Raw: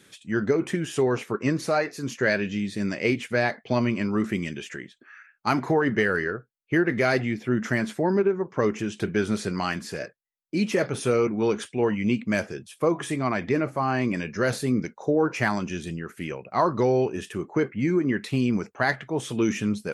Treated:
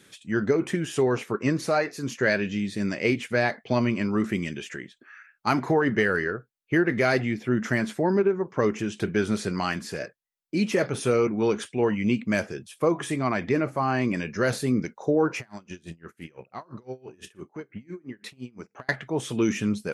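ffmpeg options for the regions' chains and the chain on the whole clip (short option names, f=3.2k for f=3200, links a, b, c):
-filter_complex "[0:a]asettb=1/sr,asplit=3[a][b][c];[a]atrim=end=15.394[d];[b]atrim=start=15.39:end=18.89,asetpts=PTS-STARTPTS,afade=t=in:d=0.004:c=qsin,afade=t=out:st=3.496:d=0.004:c=qsin,acompressor=threshold=-31dB:ratio=6:attack=3.2:release=140:knee=1:detection=peak,asplit=2[e][f];[f]adelay=47,volume=-11.5dB[g];[e][g]amix=inputs=2:normalize=0,atrim=end_sample=154350,aeval=exprs='val(0)*pow(10,-26*(0.5-0.5*cos(2*PI*5.9*n/s))/20)':c=same[h];[c]atrim=start=18.886[i];[d][h]acrossfade=d=0.004:c1=hsin:c2=qsin[j];[j][i]acrossfade=d=0.004:c1=qsin:c2=hsin"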